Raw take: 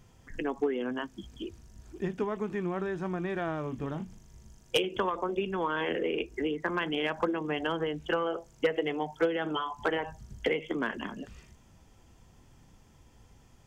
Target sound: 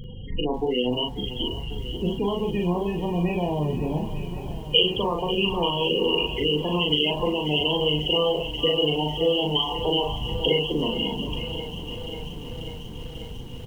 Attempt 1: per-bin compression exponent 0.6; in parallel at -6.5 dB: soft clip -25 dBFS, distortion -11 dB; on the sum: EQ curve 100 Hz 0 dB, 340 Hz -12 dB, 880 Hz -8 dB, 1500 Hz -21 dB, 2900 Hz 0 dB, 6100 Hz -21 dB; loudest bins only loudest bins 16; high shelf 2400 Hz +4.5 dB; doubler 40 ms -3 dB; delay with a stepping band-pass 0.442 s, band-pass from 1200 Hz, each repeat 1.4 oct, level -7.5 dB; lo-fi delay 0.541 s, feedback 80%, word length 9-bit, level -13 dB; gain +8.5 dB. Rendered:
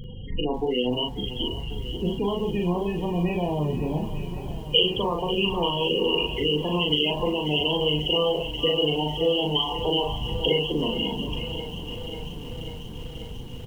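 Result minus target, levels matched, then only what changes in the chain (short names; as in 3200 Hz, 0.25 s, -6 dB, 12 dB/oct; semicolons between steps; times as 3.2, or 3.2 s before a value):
soft clip: distortion +7 dB
change: soft clip -18.5 dBFS, distortion -18 dB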